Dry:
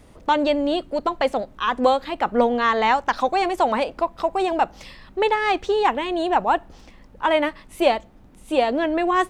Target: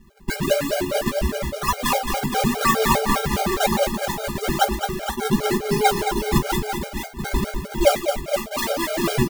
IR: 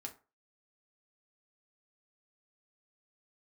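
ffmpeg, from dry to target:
-filter_complex "[0:a]bandreject=f=60:t=h:w=6,bandreject=f=120:t=h:w=6,bandreject=f=180:t=h:w=6,bandreject=f=240:t=h:w=6,bandreject=f=300:t=h:w=6,bandreject=f=360:t=h:w=6,bandreject=f=420:t=h:w=6,bandreject=f=480:t=h:w=6,acrusher=samples=41:mix=1:aa=0.000001:lfo=1:lforange=65.6:lforate=1,aecho=1:1:5.1:0.86,aecho=1:1:115|218|416|469|505|842:0.2|0.447|0.133|0.447|0.251|0.266,asplit=2[a][b];[1:a]atrim=start_sample=2205,highshelf=f=7.6k:g=12,adelay=14[c];[b][c]afir=irnorm=-1:irlink=0,volume=-4dB[d];[a][d]amix=inputs=2:normalize=0,afftfilt=real='re*gt(sin(2*PI*4.9*pts/sr)*(1-2*mod(floor(b*sr/1024/410),2)),0)':imag='im*gt(sin(2*PI*4.9*pts/sr)*(1-2*mod(floor(b*sr/1024/410),2)),0)':win_size=1024:overlap=0.75,volume=-2dB"

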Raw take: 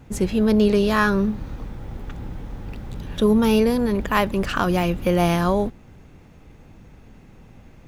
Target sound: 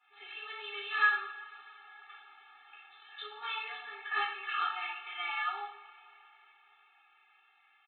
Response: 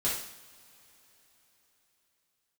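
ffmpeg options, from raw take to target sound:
-filter_complex "[0:a]highpass=f=1.1k:w=0.5412,highpass=f=1.1k:w=1.3066,aresample=8000,asoftclip=type=tanh:threshold=-14dB,aresample=44100[a];[1:a]atrim=start_sample=2205[b];[a][b]afir=irnorm=-1:irlink=0,afftfilt=real='re*eq(mod(floor(b*sr/1024/230),2),1)':imag='im*eq(mod(floor(b*sr/1024/230),2),1)':win_size=1024:overlap=0.75,volume=-8dB"

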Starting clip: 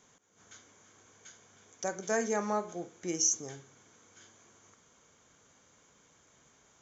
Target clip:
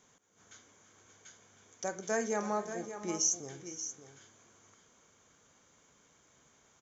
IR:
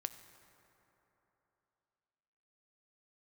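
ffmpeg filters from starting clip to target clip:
-af "aecho=1:1:457|580:0.106|0.299,volume=-2dB"

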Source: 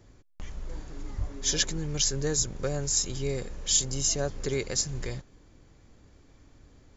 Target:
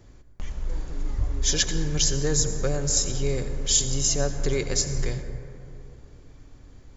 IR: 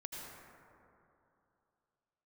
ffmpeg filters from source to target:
-filter_complex "[0:a]asplit=2[a][b];[1:a]atrim=start_sample=2205,lowshelf=f=88:g=11.5[c];[b][c]afir=irnorm=-1:irlink=0,volume=-2.5dB[d];[a][d]amix=inputs=2:normalize=0"

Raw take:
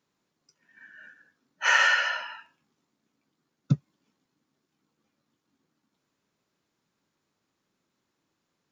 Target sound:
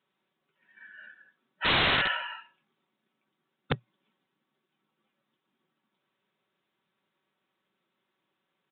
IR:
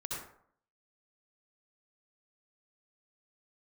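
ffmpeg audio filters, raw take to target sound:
-af "aemphasis=mode=production:type=bsi,aecho=1:1:5.3:0.51,aresample=8000,aeval=exprs='(mod(7.94*val(0)+1,2)-1)/7.94':c=same,aresample=44100,equalizer=f=120:t=o:w=0.23:g=6,volume=-1dB"

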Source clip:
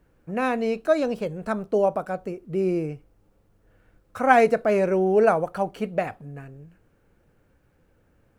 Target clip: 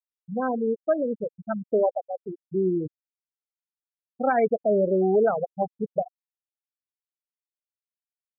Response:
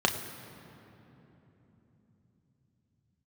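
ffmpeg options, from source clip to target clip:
-af "afftfilt=real='re*gte(hypot(re,im),0.251)':imag='im*gte(hypot(re,im),0.251)':win_size=1024:overlap=0.75,alimiter=limit=-13dB:level=0:latency=1:release=187"

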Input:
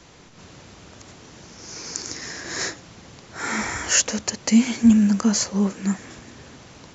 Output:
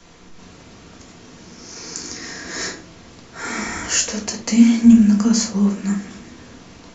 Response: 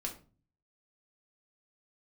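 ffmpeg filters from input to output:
-filter_complex "[0:a]acrossover=split=370|3000[a][b][c];[b]acompressor=threshold=-27dB:ratio=6[d];[a][d][c]amix=inputs=3:normalize=0[e];[1:a]atrim=start_sample=2205[f];[e][f]afir=irnorm=-1:irlink=0,volume=1.5dB"

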